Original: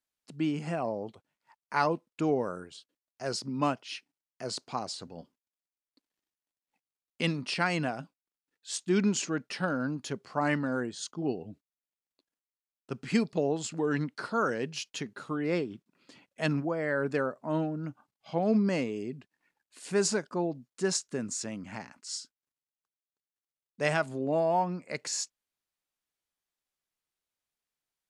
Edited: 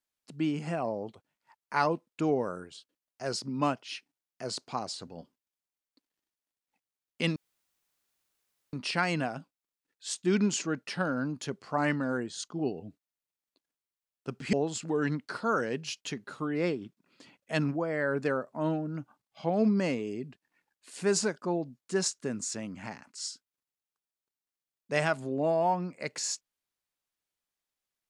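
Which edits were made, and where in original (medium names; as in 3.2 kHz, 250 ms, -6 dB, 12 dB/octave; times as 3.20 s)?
7.36 s: insert room tone 1.37 s
13.16–13.42 s: delete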